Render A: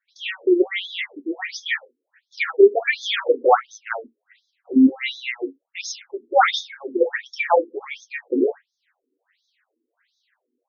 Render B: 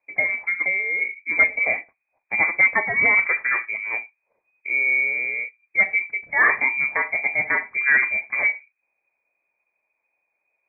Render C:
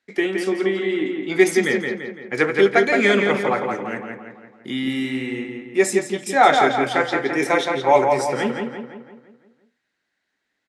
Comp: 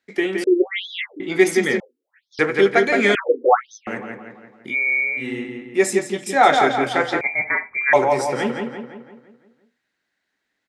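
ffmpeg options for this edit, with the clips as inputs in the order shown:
-filter_complex "[0:a]asplit=3[s0][s1][s2];[1:a]asplit=2[s3][s4];[2:a]asplit=6[s5][s6][s7][s8][s9][s10];[s5]atrim=end=0.442[s11];[s0]atrim=start=0.438:end=1.202[s12];[s6]atrim=start=1.198:end=1.802[s13];[s1]atrim=start=1.798:end=2.392[s14];[s7]atrim=start=2.388:end=3.152[s15];[s2]atrim=start=3.148:end=3.872[s16];[s8]atrim=start=3.868:end=4.76[s17];[s3]atrim=start=4.66:end=5.26[s18];[s9]atrim=start=5.16:end=7.212[s19];[s4]atrim=start=7.208:end=7.932[s20];[s10]atrim=start=7.928[s21];[s11][s12]acrossfade=d=0.004:c1=hsin:c2=hsin[s22];[s22][s13]acrossfade=d=0.004:c1=hsin:c2=hsin[s23];[s23][s14]acrossfade=d=0.004:c1=hsin:c2=hsin[s24];[s24][s15]acrossfade=d=0.004:c1=hsin:c2=hsin[s25];[s25][s16]acrossfade=d=0.004:c1=hsin:c2=hsin[s26];[s26][s17]acrossfade=d=0.004:c1=hsin:c2=hsin[s27];[s27][s18]acrossfade=d=0.1:c1=tri:c2=tri[s28];[s28][s19]acrossfade=d=0.1:c1=tri:c2=tri[s29];[s29][s20]acrossfade=d=0.004:c1=hsin:c2=hsin[s30];[s30][s21]acrossfade=d=0.004:c1=hsin:c2=hsin"

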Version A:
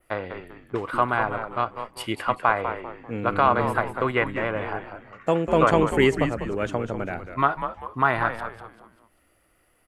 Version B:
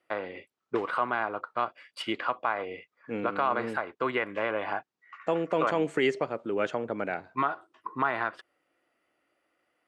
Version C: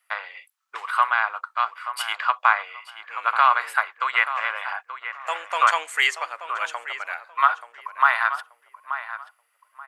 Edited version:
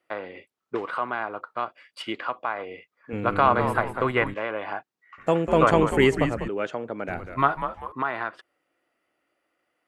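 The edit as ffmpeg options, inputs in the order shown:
-filter_complex "[0:a]asplit=3[s0][s1][s2];[1:a]asplit=4[s3][s4][s5][s6];[s3]atrim=end=3.132[s7];[s0]atrim=start=3.128:end=4.342[s8];[s4]atrim=start=4.338:end=5.182[s9];[s1]atrim=start=5.178:end=6.482[s10];[s5]atrim=start=6.478:end=7.082[s11];[s2]atrim=start=7.078:end=7.922[s12];[s6]atrim=start=7.918[s13];[s7][s8]acrossfade=d=0.004:c1=hsin:c2=hsin[s14];[s14][s9]acrossfade=d=0.004:c1=hsin:c2=hsin[s15];[s15][s10]acrossfade=d=0.004:c1=hsin:c2=hsin[s16];[s16][s11]acrossfade=d=0.004:c1=hsin:c2=hsin[s17];[s17][s12]acrossfade=d=0.004:c1=hsin:c2=hsin[s18];[s18][s13]acrossfade=d=0.004:c1=hsin:c2=hsin"

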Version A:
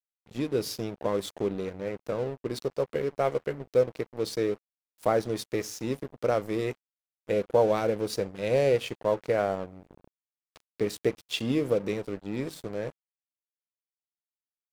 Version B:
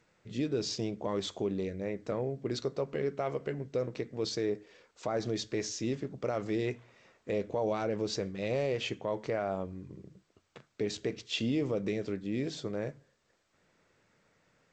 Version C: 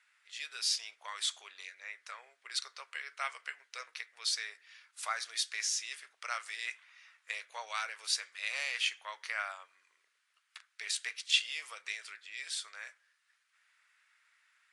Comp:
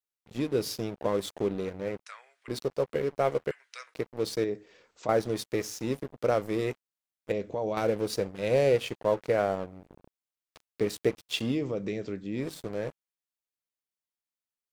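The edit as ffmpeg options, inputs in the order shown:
-filter_complex "[2:a]asplit=2[s0][s1];[1:a]asplit=3[s2][s3][s4];[0:a]asplit=6[s5][s6][s7][s8][s9][s10];[s5]atrim=end=2.062[s11];[s0]atrim=start=2.058:end=2.482[s12];[s6]atrim=start=2.478:end=3.512[s13];[s1]atrim=start=3.508:end=3.942[s14];[s7]atrim=start=3.938:end=4.442[s15];[s2]atrim=start=4.438:end=5.092[s16];[s8]atrim=start=5.088:end=7.322[s17];[s3]atrim=start=7.318:end=7.772[s18];[s9]atrim=start=7.768:end=11.6[s19];[s4]atrim=start=11.44:end=12.48[s20];[s10]atrim=start=12.32[s21];[s11][s12]acrossfade=d=0.004:c1=hsin:c2=hsin[s22];[s22][s13]acrossfade=d=0.004:c1=hsin:c2=hsin[s23];[s23][s14]acrossfade=d=0.004:c1=hsin:c2=hsin[s24];[s24][s15]acrossfade=d=0.004:c1=hsin:c2=hsin[s25];[s25][s16]acrossfade=d=0.004:c1=hsin:c2=hsin[s26];[s26][s17]acrossfade=d=0.004:c1=hsin:c2=hsin[s27];[s27][s18]acrossfade=d=0.004:c1=hsin:c2=hsin[s28];[s28][s19]acrossfade=d=0.004:c1=hsin:c2=hsin[s29];[s29][s20]acrossfade=d=0.16:c1=tri:c2=tri[s30];[s30][s21]acrossfade=d=0.16:c1=tri:c2=tri"

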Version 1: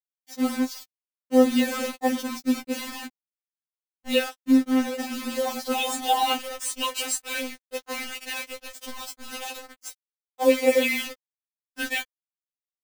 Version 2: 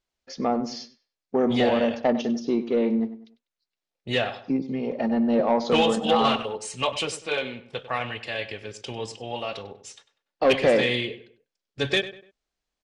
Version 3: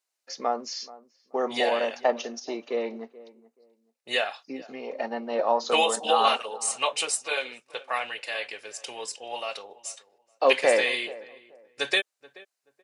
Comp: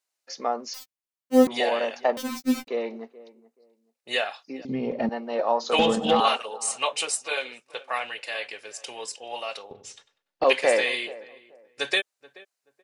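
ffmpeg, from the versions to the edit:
-filter_complex "[0:a]asplit=2[s0][s1];[1:a]asplit=3[s2][s3][s4];[2:a]asplit=6[s5][s6][s7][s8][s9][s10];[s5]atrim=end=0.742[s11];[s0]atrim=start=0.738:end=1.472[s12];[s6]atrim=start=1.468:end=2.172[s13];[s1]atrim=start=2.168:end=2.682[s14];[s7]atrim=start=2.678:end=4.652[s15];[s2]atrim=start=4.648:end=5.092[s16];[s8]atrim=start=5.088:end=5.792[s17];[s3]atrim=start=5.788:end=6.202[s18];[s9]atrim=start=6.198:end=9.712[s19];[s4]atrim=start=9.708:end=10.442[s20];[s10]atrim=start=10.438[s21];[s11][s12]acrossfade=d=0.004:c1=hsin:c2=hsin[s22];[s22][s13]acrossfade=d=0.004:c1=hsin:c2=hsin[s23];[s23][s14]acrossfade=d=0.004:c1=hsin:c2=hsin[s24];[s24][s15]acrossfade=d=0.004:c1=hsin:c2=hsin[s25];[s25][s16]acrossfade=d=0.004:c1=hsin:c2=hsin[s26];[s26][s17]acrossfade=d=0.004:c1=hsin:c2=hsin[s27];[s27][s18]acrossfade=d=0.004:c1=hsin:c2=hsin[s28];[s28][s19]acrossfade=d=0.004:c1=hsin:c2=hsin[s29];[s29][s20]acrossfade=d=0.004:c1=hsin:c2=hsin[s30];[s30][s21]acrossfade=d=0.004:c1=hsin:c2=hsin"

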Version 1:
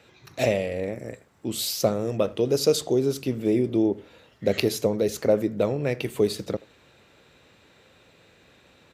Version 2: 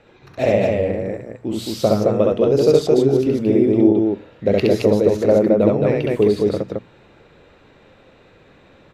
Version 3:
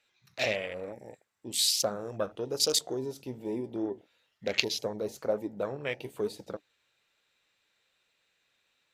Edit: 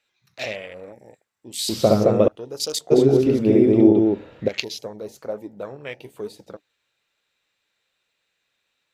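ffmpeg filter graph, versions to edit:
-filter_complex "[1:a]asplit=2[s0][s1];[2:a]asplit=3[s2][s3][s4];[s2]atrim=end=1.692[s5];[s0]atrim=start=1.688:end=2.282[s6];[s3]atrim=start=2.278:end=2.92[s7];[s1]atrim=start=2.9:end=4.49[s8];[s4]atrim=start=4.47[s9];[s5][s6]acrossfade=d=0.004:c1=hsin:c2=hsin[s10];[s10][s7]acrossfade=d=0.004:c1=hsin:c2=hsin[s11];[s11][s8]acrossfade=d=0.02:c1=tri:c2=tri[s12];[s12][s9]acrossfade=d=0.02:c1=tri:c2=tri"

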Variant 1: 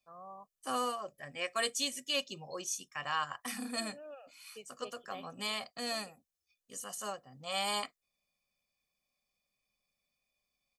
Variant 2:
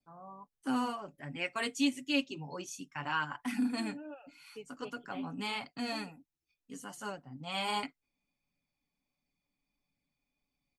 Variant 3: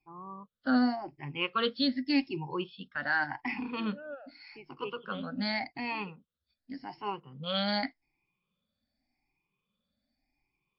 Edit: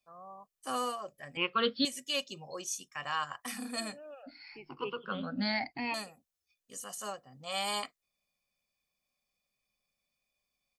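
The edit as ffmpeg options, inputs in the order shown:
-filter_complex "[2:a]asplit=2[s0][s1];[0:a]asplit=3[s2][s3][s4];[s2]atrim=end=1.372[s5];[s0]atrim=start=1.368:end=1.852[s6];[s3]atrim=start=1.848:end=4.232[s7];[s1]atrim=start=4.228:end=5.942[s8];[s4]atrim=start=5.938[s9];[s5][s6]acrossfade=d=0.004:c1=hsin:c2=hsin[s10];[s10][s7]acrossfade=d=0.004:c1=hsin:c2=hsin[s11];[s11][s8]acrossfade=d=0.004:c1=hsin:c2=hsin[s12];[s12][s9]acrossfade=d=0.004:c1=hsin:c2=hsin"

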